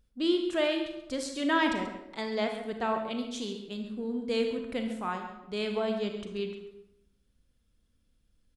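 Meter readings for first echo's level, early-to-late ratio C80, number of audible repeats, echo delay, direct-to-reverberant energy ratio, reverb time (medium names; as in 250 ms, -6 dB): -12.0 dB, 7.0 dB, 1, 135 ms, 3.5 dB, 0.90 s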